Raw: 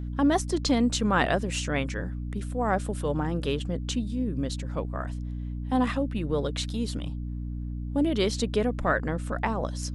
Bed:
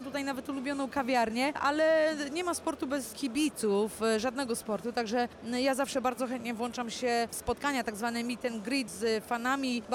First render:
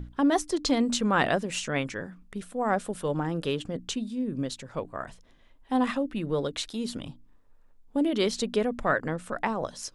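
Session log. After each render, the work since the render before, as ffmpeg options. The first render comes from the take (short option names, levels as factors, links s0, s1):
-af "bandreject=f=60:t=h:w=6,bandreject=f=120:t=h:w=6,bandreject=f=180:t=h:w=6,bandreject=f=240:t=h:w=6,bandreject=f=300:t=h:w=6"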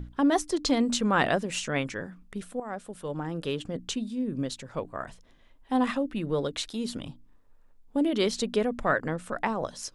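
-filter_complex "[0:a]asplit=2[s0][s1];[s0]atrim=end=2.6,asetpts=PTS-STARTPTS,afade=t=out:st=2.596:d=0.004:c=hsin:silence=0.223872[s2];[s1]atrim=start=2.6,asetpts=PTS-STARTPTS,afade=t=in:d=1.23:silence=0.223872[s3];[s2][s3]concat=n=2:v=0:a=1"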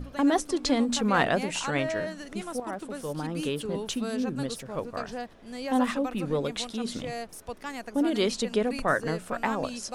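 -filter_complex "[1:a]volume=0.473[s0];[0:a][s0]amix=inputs=2:normalize=0"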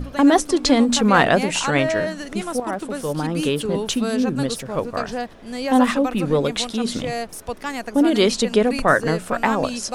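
-af "volume=2.82,alimiter=limit=0.708:level=0:latency=1"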